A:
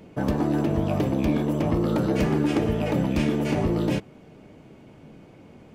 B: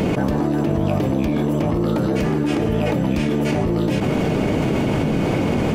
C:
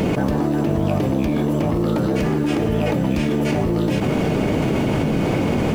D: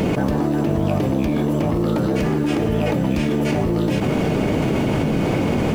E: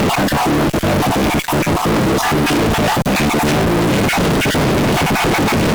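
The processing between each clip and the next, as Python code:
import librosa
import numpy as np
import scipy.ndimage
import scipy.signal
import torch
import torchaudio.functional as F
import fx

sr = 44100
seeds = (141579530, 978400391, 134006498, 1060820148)

y1 = fx.env_flatten(x, sr, amount_pct=100)
y2 = fx.dmg_noise_colour(y1, sr, seeds[0], colour='pink', level_db=-48.0)
y3 = y2
y4 = fx.spec_dropout(y3, sr, seeds[1], share_pct=28)
y4 = fx.fuzz(y4, sr, gain_db=42.0, gate_db=-42.0)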